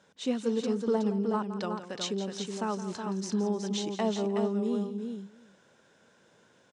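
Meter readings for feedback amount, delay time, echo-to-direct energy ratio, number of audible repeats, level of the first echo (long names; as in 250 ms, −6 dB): repeats not evenly spaced, 169 ms, −5.0 dB, 5, −12.5 dB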